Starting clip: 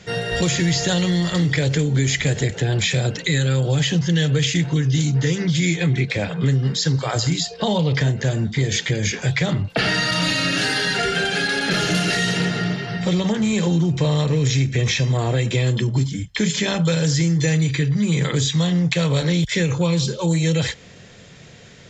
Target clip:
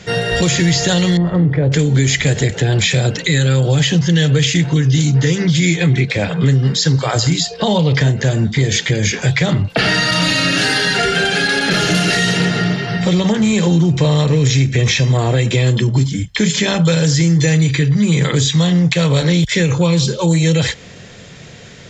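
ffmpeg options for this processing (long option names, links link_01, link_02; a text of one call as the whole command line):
ffmpeg -i in.wav -filter_complex "[0:a]asettb=1/sr,asplit=3[link_01][link_02][link_03];[link_01]atrim=end=1.174[link_04];[link_02]atrim=start=1.17:end=1.72,asetpts=PTS-STARTPTS,afade=type=in:duration=0.004:curve=qsin,afade=type=out:start_time=0.546:duration=0.004:curve=qsin,lowpass=1000[link_05];[link_03]atrim=start=1.716[link_06];[link_04][link_05]acrossfade=duration=0.004:curve1=hsin:curve2=qsin[link_07];[link_07][link_06]acrossfade=duration=0.004:curve1=qsin:curve2=hsin,asplit=2[link_08][link_09];[link_09]alimiter=limit=-15dB:level=0:latency=1:release=217,volume=-2dB[link_10];[link_08][link_10]amix=inputs=2:normalize=0,volume=2dB" out.wav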